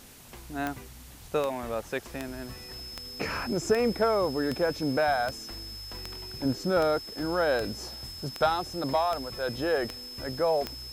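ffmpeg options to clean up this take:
-af "adeclick=t=4,bandreject=f=5.2k:w=30,afwtdn=0.0028"

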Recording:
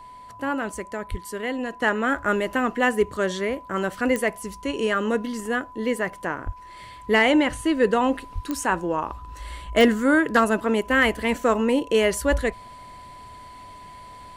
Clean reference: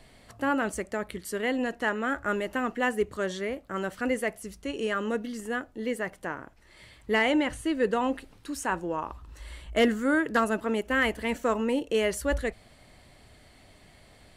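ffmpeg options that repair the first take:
-filter_complex "[0:a]adeclick=t=4,bandreject=f=1k:w=30,asplit=3[a][b][c];[a]afade=t=out:st=1.1:d=0.02[d];[b]highpass=f=140:w=0.5412,highpass=f=140:w=1.3066,afade=t=in:st=1.1:d=0.02,afade=t=out:st=1.22:d=0.02[e];[c]afade=t=in:st=1.22:d=0.02[f];[d][e][f]amix=inputs=3:normalize=0,asplit=3[g][h][i];[g]afade=t=out:st=6.45:d=0.02[j];[h]highpass=f=140:w=0.5412,highpass=f=140:w=1.3066,afade=t=in:st=6.45:d=0.02,afade=t=out:st=6.57:d=0.02[k];[i]afade=t=in:st=6.57:d=0.02[l];[j][k][l]amix=inputs=3:normalize=0,asplit=3[m][n][o];[m]afade=t=out:st=8.34:d=0.02[p];[n]highpass=f=140:w=0.5412,highpass=f=140:w=1.3066,afade=t=in:st=8.34:d=0.02,afade=t=out:st=8.46:d=0.02[q];[o]afade=t=in:st=8.46:d=0.02[r];[p][q][r]amix=inputs=3:normalize=0,asetnsamples=n=441:p=0,asendcmd='1.82 volume volume -6dB',volume=0dB"

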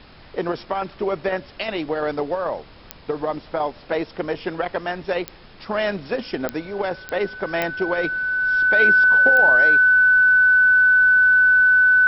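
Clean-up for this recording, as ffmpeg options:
-af "adeclick=t=4,bandreject=f=1.5k:w=30,agate=range=-21dB:threshold=-36dB"

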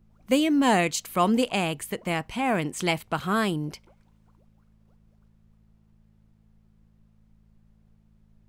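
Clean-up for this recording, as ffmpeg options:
-af "bandreject=f=54:t=h:w=4,bandreject=f=108:t=h:w=4,bandreject=f=162:t=h:w=4,bandreject=f=216:t=h:w=4,agate=range=-21dB:threshold=-53dB"

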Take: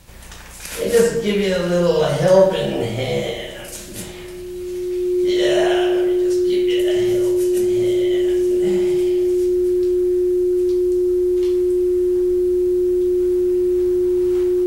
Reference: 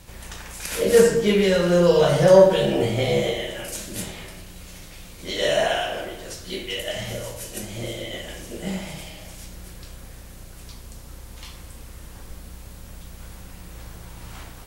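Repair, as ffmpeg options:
-af "bandreject=f=360:w=30"

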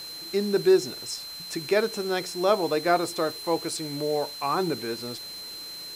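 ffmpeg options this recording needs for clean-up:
-af "adeclick=t=4,bandreject=f=4.1k:w=30,afwtdn=0.0056"

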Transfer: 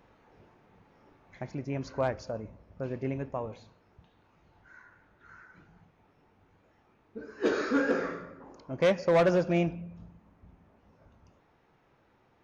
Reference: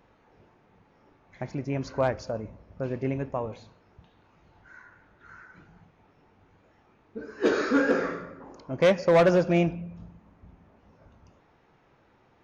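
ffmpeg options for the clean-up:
-af "asetnsamples=n=441:p=0,asendcmd='1.39 volume volume 4dB',volume=0dB"

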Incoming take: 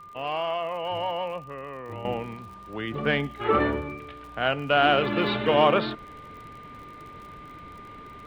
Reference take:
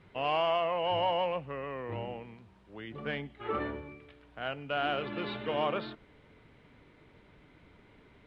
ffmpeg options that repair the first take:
-af "adeclick=t=4,bandreject=f=1.2k:w=30,asetnsamples=n=441:p=0,asendcmd='2.05 volume volume -11.5dB',volume=0dB"

